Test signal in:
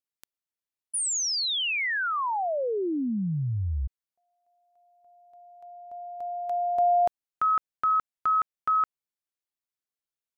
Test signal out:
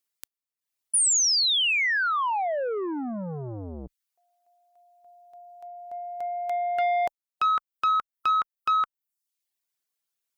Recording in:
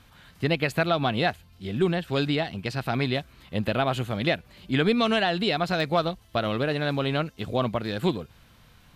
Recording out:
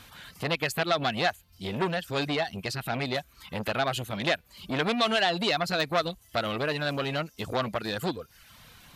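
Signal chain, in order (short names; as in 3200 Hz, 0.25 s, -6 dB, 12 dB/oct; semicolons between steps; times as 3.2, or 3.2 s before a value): reverb removal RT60 0.6 s; tilt +1.5 dB/oct; in parallel at -0.5 dB: compressor, threshold -35 dBFS; on the sum: core saturation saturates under 1800 Hz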